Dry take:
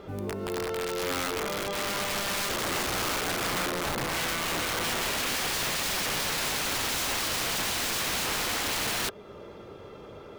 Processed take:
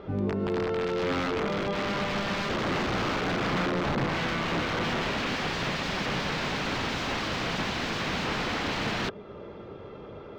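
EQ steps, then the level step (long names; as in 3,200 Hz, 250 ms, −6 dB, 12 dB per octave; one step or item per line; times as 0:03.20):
dynamic equaliser 180 Hz, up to +7 dB, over −49 dBFS, Q 0.87
high-frequency loss of the air 200 metres
+2.0 dB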